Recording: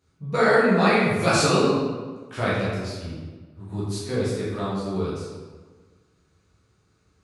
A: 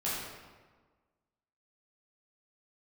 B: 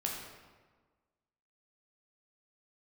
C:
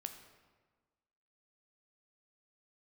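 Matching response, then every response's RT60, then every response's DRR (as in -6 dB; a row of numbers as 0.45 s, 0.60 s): A; 1.4 s, 1.4 s, 1.4 s; -9.0 dB, -2.0 dB, 6.0 dB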